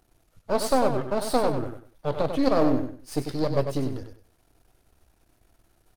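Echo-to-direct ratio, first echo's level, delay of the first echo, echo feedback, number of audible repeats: -7.0 dB, -7.5 dB, 97 ms, 26%, 3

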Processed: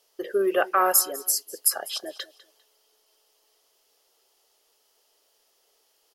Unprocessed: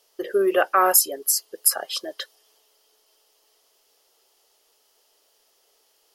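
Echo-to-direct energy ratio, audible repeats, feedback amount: -18.5 dB, 2, 27%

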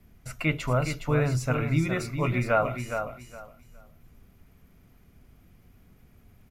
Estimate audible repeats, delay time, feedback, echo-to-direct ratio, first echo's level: 3, 414 ms, 21%, -7.5 dB, -7.5 dB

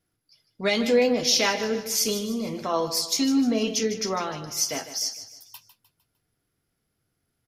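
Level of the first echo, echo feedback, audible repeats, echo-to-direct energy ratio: -12.0 dB, 43%, 4, -11.0 dB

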